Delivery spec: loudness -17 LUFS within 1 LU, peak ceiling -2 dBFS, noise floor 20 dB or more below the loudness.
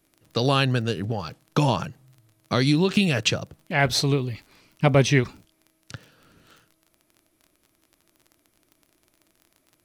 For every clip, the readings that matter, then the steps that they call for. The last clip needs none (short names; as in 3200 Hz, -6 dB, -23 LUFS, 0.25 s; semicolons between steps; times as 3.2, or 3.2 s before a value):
ticks 29/s; loudness -23.0 LUFS; peak -5.5 dBFS; loudness target -17.0 LUFS
-> de-click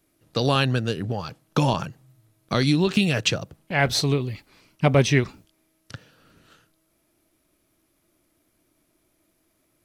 ticks 0/s; loudness -23.0 LUFS; peak -5.5 dBFS; loudness target -17.0 LUFS
-> gain +6 dB; limiter -2 dBFS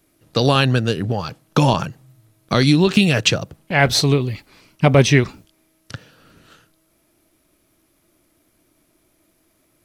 loudness -17.5 LUFS; peak -2.0 dBFS; noise floor -63 dBFS